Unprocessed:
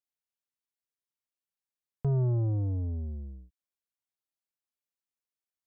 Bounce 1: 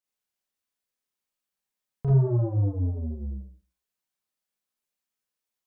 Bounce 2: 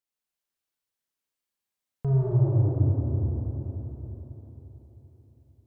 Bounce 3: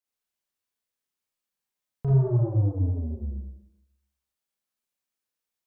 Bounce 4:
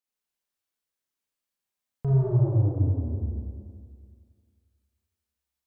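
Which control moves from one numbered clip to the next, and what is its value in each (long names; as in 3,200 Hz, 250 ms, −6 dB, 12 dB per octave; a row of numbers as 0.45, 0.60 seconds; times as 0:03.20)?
four-comb reverb, RT60: 0.36, 4.3, 0.82, 2 seconds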